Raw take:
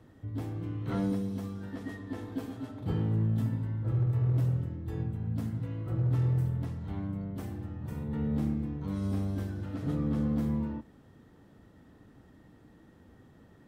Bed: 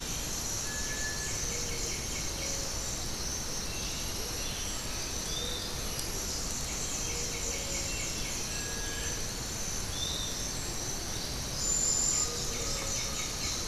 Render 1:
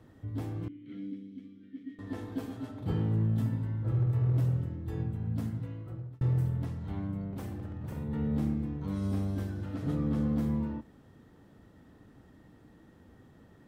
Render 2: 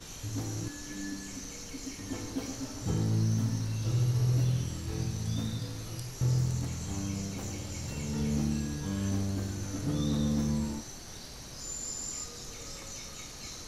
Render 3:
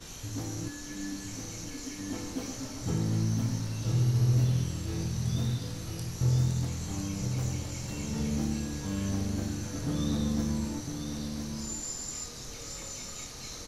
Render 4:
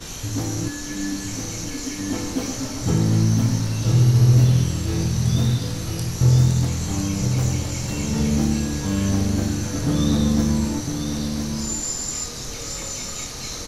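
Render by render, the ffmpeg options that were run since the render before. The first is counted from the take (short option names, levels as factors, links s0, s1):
-filter_complex "[0:a]asettb=1/sr,asplit=3[s0][s1][s2];[s0]atrim=end=0.684[s3];[s1]atrim=start=0.68:end=1.99,asetpts=PTS-STARTPTS,afade=t=in:d=0.004:c=qsin,afade=t=out:st=1.306:d=0.004:c=qsin,asplit=3[s4][s5][s6];[s4]bandpass=f=270:t=q:w=8,volume=1[s7];[s5]bandpass=f=2290:t=q:w=8,volume=0.501[s8];[s6]bandpass=f=3010:t=q:w=8,volume=0.355[s9];[s7][s8][s9]amix=inputs=3:normalize=0[s10];[s2]atrim=start=1.986[s11];[s3][s10]acrossfade=d=0.004:c1=hsin:c2=qsin[s12];[s12][s11]acrossfade=d=0.004:c1=qsin:c2=hsin,asettb=1/sr,asplit=3[s13][s14][s15];[s13]atrim=end=7.314[s16];[s14]atrim=start=7.31:end=7.98,asetpts=PTS-STARTPTS,afade=t=in:d=0.004:c=qsin,afade=t=out:st=0.666:d=0.004:c=qsin,aeval=exprs='0.0251*(abs(mod(val(0)/0.0251+3,4)-2)-1)':c=same[s17];[s15]atrim=start=7.976[s18];[s16][s17]acrossfade=d=0.004:c1=hsin:c2=qsin[s19];[s19][s18]acrossfade=d=0.004:c1=qsin:c2=hsin,asplit=2[s20][s21];[s20]atrim=end=6.21,asetpts=PTS-STARTPTS,afade=t=out:st=5.46:d=0.75[s22];[s21]atrim=start=6.21,asetpts=PTS-STARTPTS,afade=t=in:d=0.004:c=hsin[s23];[s22][s23]concat=n=2:v=0:a=1"
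-filter_complex "[1:a]volume=0.335[s0];[0:a][s0]amix=inputs=2:normalize=0"
-filter_complex "[0:a]asplit=2[s0][s1];[s1]adelay=24,volume=0.282[s2];[s0][s2]amix=inputs=2:normalize=0,aecho=1:1:1006:0.447"
-af "volume=3.35"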